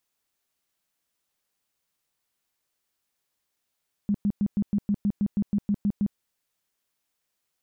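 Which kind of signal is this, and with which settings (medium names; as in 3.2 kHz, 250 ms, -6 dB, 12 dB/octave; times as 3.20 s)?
tone bursts 204 Hz, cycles 11, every 0.16 s, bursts 13, -20 dBFS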